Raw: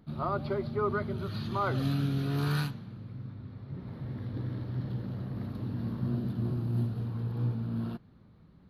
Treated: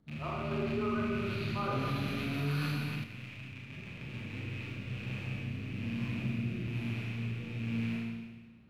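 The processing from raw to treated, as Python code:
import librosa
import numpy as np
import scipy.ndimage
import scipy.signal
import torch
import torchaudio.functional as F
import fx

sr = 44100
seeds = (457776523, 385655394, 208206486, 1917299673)

y = fx.rattle_buzz(x, sr, strikes_db=-41.0, level_db=-29.0)
y = fx.rotary_switch(y, sr, hz=6.7, then_hz=1.1, switch_at_s=3.99)
y = fx.rev_schroeder(y, sr, rt60_s=1.4, comb_ms=27, drr_db=-4.5)
y = fx.env_flatten(y, sr, amount_pct=50, at=(0.51, 3.04))
y = y * librosa.db_to_amplitude(-8.0)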